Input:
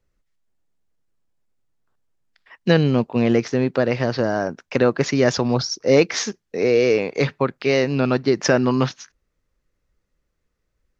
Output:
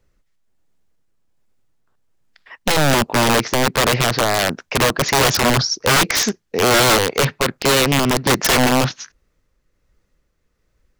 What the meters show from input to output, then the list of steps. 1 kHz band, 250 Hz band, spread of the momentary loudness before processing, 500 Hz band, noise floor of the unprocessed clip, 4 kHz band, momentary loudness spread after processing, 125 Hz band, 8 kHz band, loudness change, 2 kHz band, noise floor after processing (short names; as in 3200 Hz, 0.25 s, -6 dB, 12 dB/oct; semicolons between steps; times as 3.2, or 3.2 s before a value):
+10.5 dB, -1.0 dB, 6 LU, -1.0 dB, -75 dBFS, +11.5 dB, 5 LU, +1.5 dB, n/a, +3.5 dB, +8.0 dB, -68 dBFS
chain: in parallel at +0.5 dB: limiter -11 dBFS, peak gain reduction 9 dB; on the sum: tremolo 1.3 Hz, depth 29%; wrapped overs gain 10.5 dB; Doppler distortion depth 0.26 ms; gain +2 dB